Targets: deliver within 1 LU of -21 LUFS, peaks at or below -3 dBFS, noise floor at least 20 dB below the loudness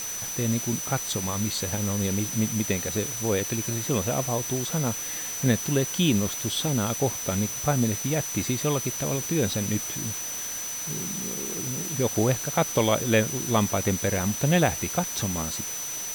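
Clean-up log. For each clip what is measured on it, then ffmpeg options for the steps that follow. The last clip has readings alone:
steady tone 6000 Hz; tone level -32 dBFS; noise floor -33 dBFS; noise floor target -46 dBFS; loudness -26.0 LUFS; peak -9.0 dBFS; loudness target -21.0 LUFS
-> -af "bandreject=f=6k:w=30"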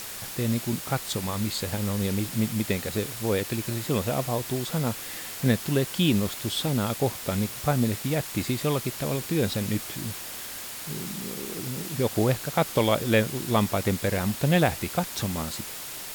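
steady tone none; noise floor -38 dBFS; noise floor target -47 dBFS
-> -af "afftdn=nr=9:nf=-38"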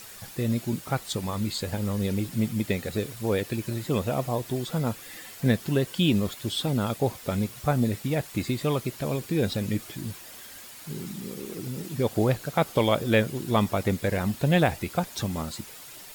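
noise floor -45 dBFS; noise floor target -48 dBFS
-> -af "afftdn=nr=6:nf=-45"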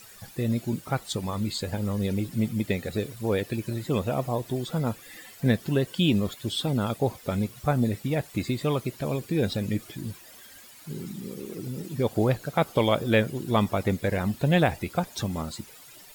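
noise floor -49 dBFS; loudness -27.5 LUFS; peak -10.0 dBFS; loudness target -21.0 LUFS
-> -af "volume=6.5dB"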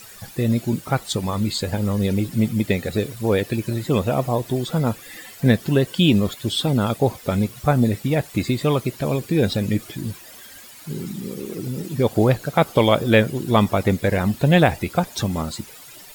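loudness -21.0 LUFS; peak -3.5 dBFS; noise floor -43 dBFS

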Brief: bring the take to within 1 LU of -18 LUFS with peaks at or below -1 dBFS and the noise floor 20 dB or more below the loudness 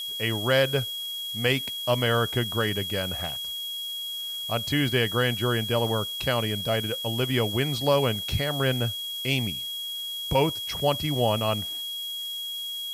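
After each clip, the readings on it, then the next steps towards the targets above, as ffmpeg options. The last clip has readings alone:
steady tone 3300 Hz; tone level -31 dBFS; noise floor -34 dBFS; noise floor target -46 dBFS; loudness -26.0 LUFS; peak -10.0 dBFS; loudness target -18.0 LUFS
-> -af "bandreject=f=3.3k:w=30"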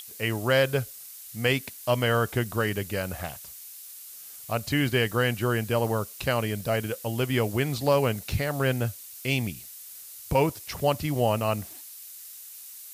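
steady tone none; noise floor -44 dBFS; noise floor target -47 dBFS
-> -af "afftdn=nr=6:nf=-44"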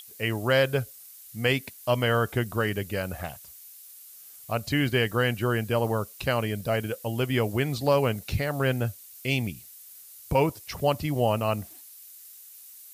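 noise floor -48 dBFS; loudness -27.0 LUFS; peak -11.0 dBFS; loudness target -18.0 LUFS
-> -af "volume=9dB"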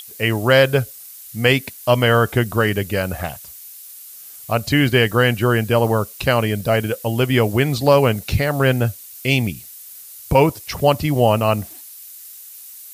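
loudness -18.0 LUFS; peak -2.0 dBFS; noise floor -39 dBFS

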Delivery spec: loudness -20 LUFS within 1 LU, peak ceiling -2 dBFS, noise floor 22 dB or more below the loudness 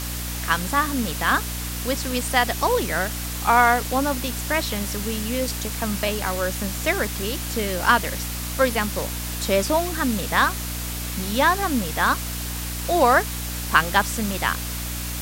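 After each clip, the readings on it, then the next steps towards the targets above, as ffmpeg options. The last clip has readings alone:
hum 60 Hz; harmonics up to 300 Hz; hum level -29 dBFS; noise floor -29 dBFS; noise floor target -45 dBFS; loudness -22.5 LUFS; peak -2.0 dBFS; loudness target -20.0 LUFS
-> -af "bandreject=f=60:t=h:w=6,bandreject=f=120:t=h:w=6,bandreject=f=180:t=h:w=6,bandreject=f=240:t=h:w=6,bandreject=f=300:t=h:w=6"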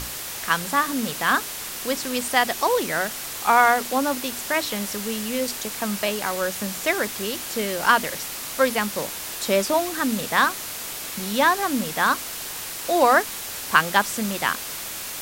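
hum none; noise floor -33 dBFS; noise floor target -45 dBFS
-> -af "afftdn=nr=12:nf=-33"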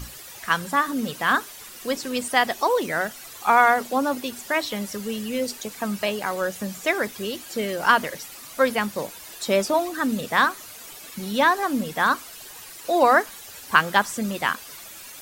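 noise floor -42 dBFS; noise floor target -45 dBFS
-> -af "afftdn=nr=6:nf=-42"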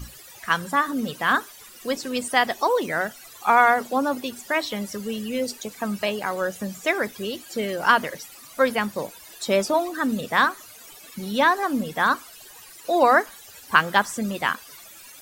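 noise floor -46 dBFS; loudness -23.5 LUFS; peak -2.0 dBFS; loudness target -20.0 LUFS
-> -af "volume=3.5dB,alimiter=limit=-2dB:level=0:latency=1"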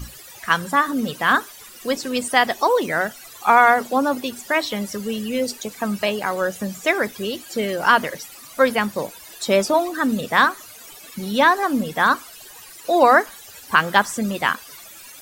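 loudness -20.0 LUFS; peak -2.0 dBFS; noise floor -42 dBFS

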